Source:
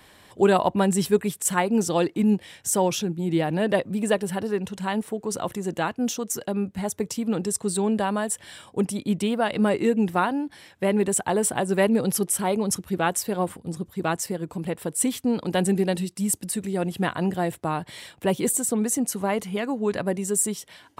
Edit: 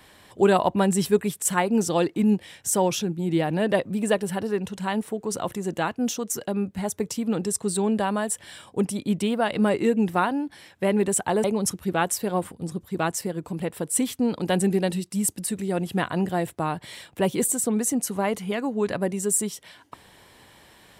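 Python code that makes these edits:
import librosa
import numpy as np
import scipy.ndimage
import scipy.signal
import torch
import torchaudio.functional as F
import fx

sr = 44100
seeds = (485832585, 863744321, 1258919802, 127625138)

y = fx.edit(x, sr, fx.cut(start_s=11.44, length_s=1.05), tone=tone)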